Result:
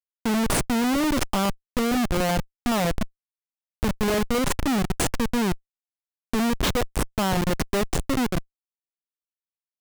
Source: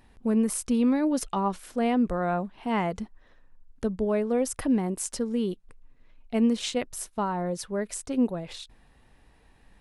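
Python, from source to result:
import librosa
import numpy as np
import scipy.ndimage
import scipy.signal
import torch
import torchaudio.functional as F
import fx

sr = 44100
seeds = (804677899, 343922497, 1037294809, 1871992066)

y = fx.dereverb_blind(x, sr, rt60_s=1.0)
y = fx.schmitt(y, sr, flips_db=-29.0)
y = y * librosa.db_to_amplitude(8.0)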